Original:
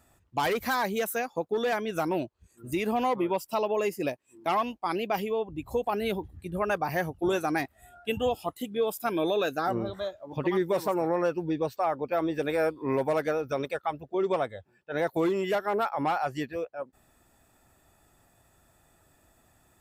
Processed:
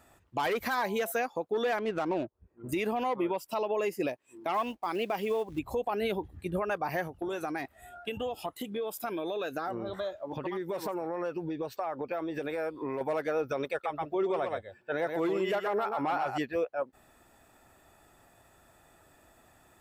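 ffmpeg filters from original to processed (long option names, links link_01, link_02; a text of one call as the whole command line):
ffmpeg -i in.wav -filter_complex "[0:a]asettb=1/sr,asplit=3[link_01][link_02][link_03];[link_01]atrim=end=0.724[link_04];[link_02]atrim=start=0.72:end=1.12,asetpts=PTS-STARTPTS,afade=type=in:duration=0.004:curve=qsin,afade=type=out:start_time=0.396:duration=0.004:curve=qsin,bandreject=frequency=169.3:width_type=h:width=4,bandreject=frequency=338.6:width_type=h:width=4,bandreject=frequency=507.9:width_type=h:width=4,bandreject=frequency=677.2:width_type=h:width=4,bandreject=frequency=846.5:width_type=h:width=4,bandreject=frequency=1015.8:width_type=h:width=4[link_05];[link_03]atrim=start=1.116[link_06];[link_04][link_05]acrossfade=duration=0.004:curve1=hsin:curve2=qsin[link_07];[link_07][link_06]acrossfade=duration=0.004:curve1=qsin:curve2=hsin,asettb=1/sr,asplit=3[link_08][link_09][link_10];[link_08]atrim=end=1.784[link_11];[link_09]atrim=start=1.78:end=2.69,asetpts=PTS-STARTPTS,afade=type=in:duration=0.004:curve=qsin,afade=type=out:start_time=0.906:duration=0.004:curve=qsin,adynamicsmooth=sensitivity=6.5:basefreq=810[link_12];[link_10]atrim=start=2.686[link_13];[link_11][link_12]acrossfade=duration=0.004:curve1=hsin:curve2=qsin[link_14];[link_14][link_13]acrossfade=duration=0.004:curve1=qsin:curve2=hsin,asettb=1/sr,asplit=3[link_15][link_16][link_17];[link_15]atrim=end=4.544[link_18];[link_16]atrim=start=4.54:end=5.59,asetpts=PTS-STARTPTS,afade=type=in:duration=0.004:curve=qsin,afade=type=out:start_time=1.046:duration=0.004:curve=qsin,acrusher=bits=6:mode=log:mix=0:aa=0.000001[link_19];[link_17]atrim=start=5.586[link_20];[link_18][link_19]acrossfade=duration=0.004:curve1=hsin:curve2=qsin[link_21];[link_21][link_20]acrossfade=duration=0.004:curve1=qsin:curve2=hsin,asettb=1/sr,asplit=3[link_22][link_23][link_24];[link_22]atrim=end=7.074[link_25];[link_23]atrim=start=7.07:end=13.01,asetpts=PTS-STARTPTS,afade=type=in:duration=0.004:curve=qsin,afade=type=out:start_time=5.936:duration=0.004:curve=qsin,acompressor=threshold=-34dB:ratio=16:attack=3.2:release=140:knee=1:detection=peak[link_26];[link_24]atrim=start=13.006[link_27];[link_25][link_26]acrossfade=duration=0.004:curve1=hsin:curve2=qsin[link_28];[link_28][link_27]acrossfade=duration=0.004:curve1=qsin:curve2=hsin,asettb=1/sr,asplit=3[link_29][link_30][link_31];[link_29]atrim=end=13.714[link_32];[link_30]atrim=start=13.71:end=16.38,asetpts=PTS-STARTPTS,afade=type=in:duration=0.004:curve=qsin,afade=type=out:start_time=2.666:duration=0.004:curve=qsin,aecho=1:1:124:0.398,atrim=end_sample=117747[link_33];[link_31]atrim=start=16.376[link_34];[link_32][link_33]acrossfade=duration=0.004:curve1=hsin:curve2=qsin[link_35];[link_35][link_34]acrossfade=duration=0.004:curve1=qsin:curve2=hsin,bass=frequency=250:gain=-6,treble=frequency=4000:gain=-5,alimiter=level_in=3dB:limit=-24dB:level=0:latency=1:release=189,volume=-3dB,volume=5dB" out.wav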